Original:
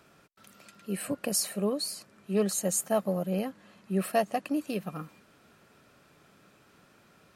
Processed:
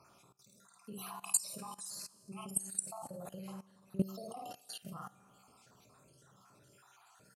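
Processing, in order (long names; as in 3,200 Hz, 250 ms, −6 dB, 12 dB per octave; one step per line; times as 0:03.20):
time-frequency cells dropped at random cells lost 67%
octave-band graphic EQ 125/1,000/2,000/8,000 Hz +11/+9/−8/+9 dB
downward compressor 12 to 1, threshold −29 dBFS, peak gain reduction 10.5 dB
low-shelf EQ 490 Hz −5 dB
tuned comb filter 64 Hz, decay 1.4 s, harmonics all, mix 60%
hum removal 45.87 Hz, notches 20
on a send: ambience of single reflections 37 ms −15 dB, 52 ms −4.5 dB
on the sum: output level in coarse steps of 19 dB
level +11.5 dB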